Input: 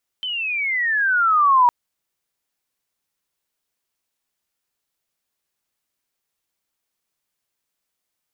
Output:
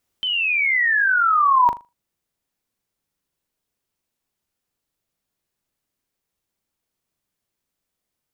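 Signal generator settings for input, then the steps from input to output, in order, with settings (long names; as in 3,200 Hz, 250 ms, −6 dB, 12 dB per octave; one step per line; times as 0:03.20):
glide logarithmic 3,100 Hz → 950 Hz −23.5 dBFS → −10 dBFS 1.46 s
low-shelf EQ 470 Hz +10.5 dB
speech leveller within 3 dB 0.5 s
on a send: flutter between parallel walls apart 6.8 metres, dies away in 0.24 s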